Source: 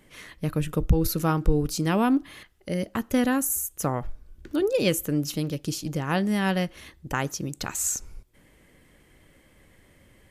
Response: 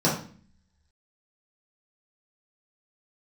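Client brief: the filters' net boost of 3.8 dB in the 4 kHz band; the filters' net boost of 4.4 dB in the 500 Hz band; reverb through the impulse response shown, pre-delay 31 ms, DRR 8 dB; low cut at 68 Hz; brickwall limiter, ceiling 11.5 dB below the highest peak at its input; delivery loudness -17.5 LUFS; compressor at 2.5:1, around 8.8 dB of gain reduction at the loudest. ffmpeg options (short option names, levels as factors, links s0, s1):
-filter_complex "[0:a]highpass=68,equalizer=f=500:t=o:g=5,equalizer=f=4000:t=o:g=5,acompressor=threshold=0.0398:ratio=2.5,alimiter=level_in=1.26:limit=0.0631:level=0:latency=1,volume=0.794,asplit=2[s0][s1];[1:a]atrim=start_sample=2205,adelay=31[s2];[s1][s2]afir=irnorm=-1:irlink=0,volume=0.0708[s3];[s0][s3]amix=inputs=2:normalize=0,volume=5.96"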